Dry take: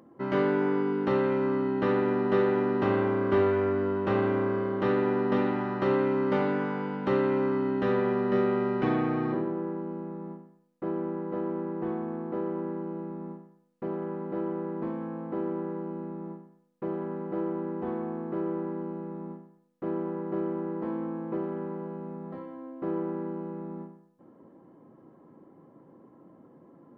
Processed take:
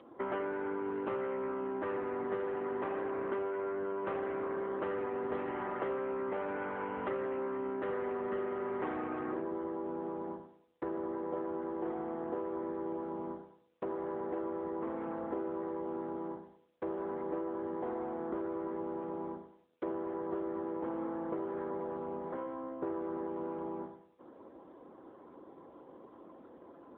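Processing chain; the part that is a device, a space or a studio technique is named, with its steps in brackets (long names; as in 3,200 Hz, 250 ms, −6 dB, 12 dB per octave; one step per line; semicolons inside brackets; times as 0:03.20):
voicemail (band-pass filter 400–2,700 Hz; downward compressor 8 to 1, threshold −39 dBFS, peak gain reduction 16 dB; level +6 dB; AMR narrowband 7.95 kbit/s 8,000 Hz)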